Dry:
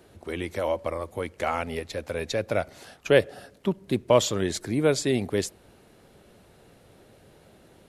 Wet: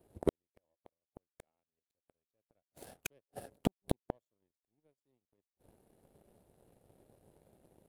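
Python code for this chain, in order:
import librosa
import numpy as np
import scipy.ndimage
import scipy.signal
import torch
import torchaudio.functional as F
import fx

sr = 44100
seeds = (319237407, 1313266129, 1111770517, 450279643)

y = fx.gate_flip(x, sr, shuts_db=-25.0, range_db=-38)
y = fx.power_curve(y, sr, exponent=2.0)
y = fx.band_shelf(y, sr, hz=2700.0, db=-11.0, octaves=3.0)
y = y * 10.0 ** (15.5 / 20.0)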